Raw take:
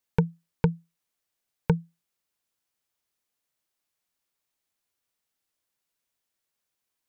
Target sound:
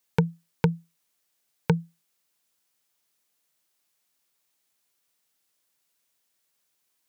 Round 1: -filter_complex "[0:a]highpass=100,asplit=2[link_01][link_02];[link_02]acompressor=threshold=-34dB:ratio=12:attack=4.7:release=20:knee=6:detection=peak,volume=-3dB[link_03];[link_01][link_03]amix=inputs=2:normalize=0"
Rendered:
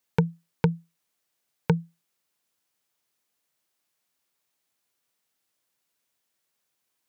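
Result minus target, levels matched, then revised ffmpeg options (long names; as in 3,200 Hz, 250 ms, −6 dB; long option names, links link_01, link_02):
8,000 Hz band −4.0 dB
-filter_complex "[0:a]highpass=100,highshelf=frequency=3100:gain=4.5,asplit=2[link_01][link_02];[link_02]acompressor=threshold=-34dB:ratio=12:attack=4.7:release=20:knee=6:detection=peak,volume=-3dB[link_03];[link_01][link_03]amix=inputs=2:normalize=0"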